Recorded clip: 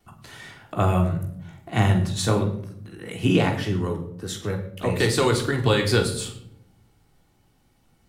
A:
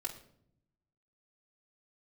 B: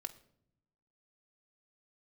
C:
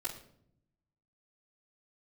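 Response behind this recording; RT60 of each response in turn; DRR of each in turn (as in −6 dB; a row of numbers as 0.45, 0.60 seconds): C; 0.65, 0.70, 0.65 seconds; −2.5, 6.5, −11.0 decibels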